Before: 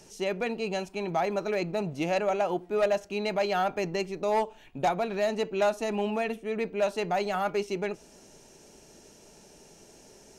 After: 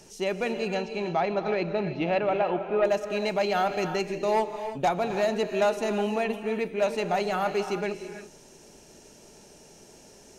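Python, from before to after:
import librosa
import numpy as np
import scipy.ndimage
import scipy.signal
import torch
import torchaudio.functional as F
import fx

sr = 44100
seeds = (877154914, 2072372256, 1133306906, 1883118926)

y = fx.lowpass(x, sr, hz=fx.line((0.74, 5600.0), (2.84, 2900.0)), slope=24, at=(0.74, 2.84), fade=0.02)
y = fx.rev_gated(y, sr, seeds[0], gate_ms=360, shape='rising', drr_db=8.0)
y = y * librosa.db_to_amplitude(1.5)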